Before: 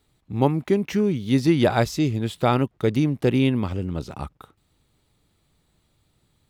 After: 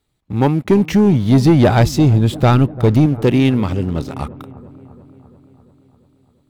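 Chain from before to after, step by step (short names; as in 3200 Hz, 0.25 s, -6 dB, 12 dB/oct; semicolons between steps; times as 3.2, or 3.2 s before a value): 0.67–3.06 low shelf 170 Hz +11 dB; sample leveller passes 2; dark delay 0.344 s, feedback 63%, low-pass 1200 Hz, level -18.5 dB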